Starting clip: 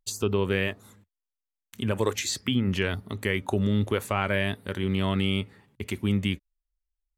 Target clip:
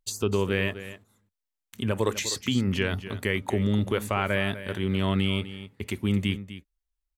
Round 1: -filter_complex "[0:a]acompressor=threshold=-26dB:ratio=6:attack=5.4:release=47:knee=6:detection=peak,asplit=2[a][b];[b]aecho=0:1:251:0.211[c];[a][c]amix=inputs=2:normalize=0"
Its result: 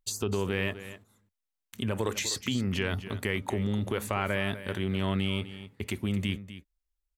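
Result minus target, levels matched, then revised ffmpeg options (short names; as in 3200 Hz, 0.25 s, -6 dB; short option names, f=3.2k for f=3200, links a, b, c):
compressor: peak gain reduction +7 dB
-filter_complex "[0:a]asplit=2[a][b];[b]aecho=0:1:251:0.211[c];[a][c]amix=inputs=2:normalize=0"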